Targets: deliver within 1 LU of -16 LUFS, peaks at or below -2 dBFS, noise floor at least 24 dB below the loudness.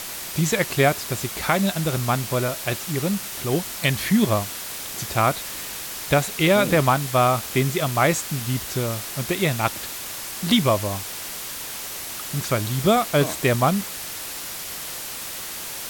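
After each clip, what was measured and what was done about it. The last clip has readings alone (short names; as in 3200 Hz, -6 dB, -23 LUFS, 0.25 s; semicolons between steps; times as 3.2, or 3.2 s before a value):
noise floor -33 dBFS; noise floor target -47 dBFS; loudness -23.0 LUFS; peak -5.0 dBFS; loudness target -16.0 LUFS
-> noise print and reduce 14 dB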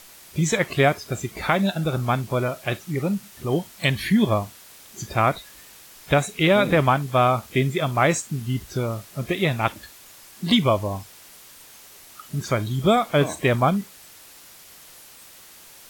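noise floor -47 dBFS; loudness -22.5 LUFS; peak -5.0 dBFS; loudness target -16.0 LUFS
-> gain +6.5 dB; limiter -2 dBFS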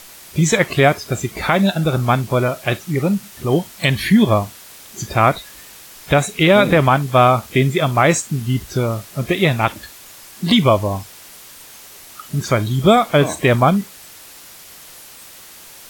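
loudness -16.5 LUFS; peak -2.0 dBFS; noise floor -41 dBFS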